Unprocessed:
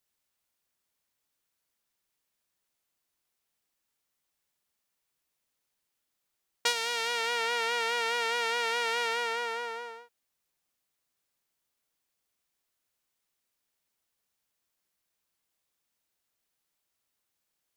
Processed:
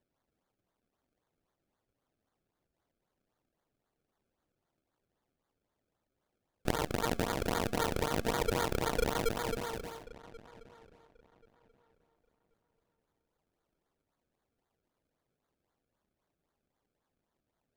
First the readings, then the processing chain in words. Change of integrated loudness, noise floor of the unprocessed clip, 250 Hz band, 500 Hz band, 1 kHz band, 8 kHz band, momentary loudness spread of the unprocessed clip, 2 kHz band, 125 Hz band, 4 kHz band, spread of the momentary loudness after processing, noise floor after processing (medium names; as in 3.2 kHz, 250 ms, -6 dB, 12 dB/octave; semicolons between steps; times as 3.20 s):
-4.5 dB, -82 dBFS, +20.5 dB, +0.5 dB, -4.5 dB, -4.0 dB, 7 LU, -10.0 dB, no reading, -9.5 dB, 14 LU, under -85 dBFS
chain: decimation with a swept rate 32×, swing 100% 3.8 Hz; filtered feedback delay 1084 ms, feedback 22%, low-pass 3.4 kHz, level -19 dB; trim -2.5 dB